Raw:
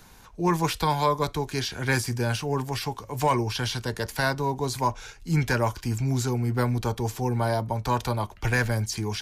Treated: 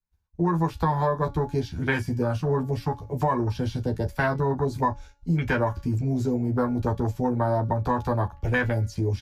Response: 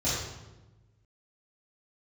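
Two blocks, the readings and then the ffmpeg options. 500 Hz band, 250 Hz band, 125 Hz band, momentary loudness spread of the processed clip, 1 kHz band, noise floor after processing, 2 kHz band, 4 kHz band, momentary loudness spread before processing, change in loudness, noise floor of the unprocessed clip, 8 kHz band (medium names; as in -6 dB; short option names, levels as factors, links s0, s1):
+2.0 dB, +3.0 dB, +1.0 dB, 4 LU, -0.5 dB, -57 dBFS, -1.0 dB, -11.5 dB, 5 LU, +0.5 dB, -50 dBFS, under -10 dB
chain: -filter_complex "[0:a]lowshelf=f=130:g=11,afwtdn=0.0447,highpass=f=64:p=1,equalizer=f=9200:t=o:w=0.54:g=-3.5,agate=range=0.0224:threshold=0.0141:ratio=3:detection=peak,acrossover=split=290|1300|6300[s0][s1][s2][s3];[s0]alimiter=limit=0.0794:level=0:latency=1[s4];[s4][s1][s2][s3]amix=inputs=4:normalize=0,aecho=1:1:12|36:0.668|0.158,acompressor=threshold=0.0794:ratio=6,bandreject=f=283.5:t=h:w=4,bandreject=f=567:t=h:w=4,bandreject=f=850.5:t=h:w=4,bandreject=f=1134:t=h:w=4,bandreject=f=1417.5:t=h:w=4,bandreject=f=1701:t=h:w=4,bandreject=f=1984.5:t=h:w=4,bandreject=f=2268:t=h:w=4,bandreject=f=2551.5:t=h:w=4,bandreject=f=2835:t=h:w=4,bandreject=f=3118.5:t=h:w=4,bandreject=f=3402:t=h:w=4,bandreject=f=3685.5:t=h:w=4,bandreject=f=3969:t=h:w=4,bandreject=f=4252.5:t=h:w=4,bandreject=f=4536:t=h:w=4,bandreject=f=4819.5:t=h:w=4,bandreject=f=5103:t=h:w=4,bandreject=f=5386.5:t=h:w=4,bandreject=f=5670:t=h:w=4,bandreject=f=5953.5:t=h:w=4,bandreject=f=6237:t=h:w=4,bandreject=f=6520.5:t=h:w=4,bandreject=f=6804:t=h:w=4,bandreject=f=7087.5:t=h:w=4,bandreject=f=7371:t=h:w=4,bandreject=f=7654.5:t=h:w=4,volume=1.33"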